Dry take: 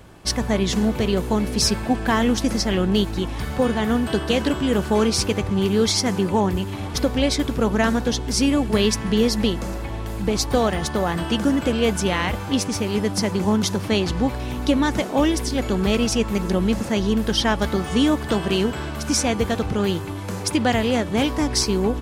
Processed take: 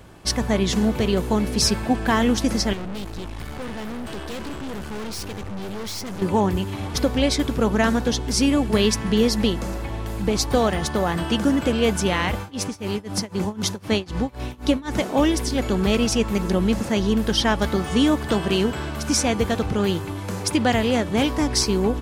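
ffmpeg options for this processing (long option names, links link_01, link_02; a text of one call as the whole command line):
ffmpeg -i in.wav -filter_complex "[0:a]asettb=1/sr,asplit=3[link_01][link_02][link_03];[link_01]atrim=end=2.734[link_04];[link_02]atrim=start=2.73:end=6.22,asetpts=PTS-STARTPTS,afade=type=in:duration=0.004:curve=qsin,afade=type=out:start_time=3.486:duration=0.004:curve=qsin,aeval=exprs='(tanh(31.6*val(0)+0.7)-tanh(0.7))/31.6':channel_layout=same[link_05];[link_03]atrim=start=6.216[link_06];[link_04][link_05]acrossfade=duration=0.004:curve1=hsin:curve2=qsin[link_07];[link_07][link_06]acrossfade=duration=0.004:curve1=qsin:curve2=hsin,asettb=1/sr,asplit=3[link_08][link_09][link_10];[link_08]atrim=end=12.394[link_11];[link_09]atrim=start=12.39:end=14.95,asetpts=PTS-STARTPTS,afade=type=in:duration=0.004:curve=qsin,afade=type=out:start_time=2.556:duration=0.004:curve=qsin,tremolo=f=3.9:d=0.93[link_12];[link_10]atrim=start=14.946[link_13];[link_11][link_12]acrossfade=duration=0.004:curve1=hsin:curve2=qsin[link_14];[link_14][link_13]acrossfade=duration=0.004:curve1=qsin:curve2=hsin" out.wav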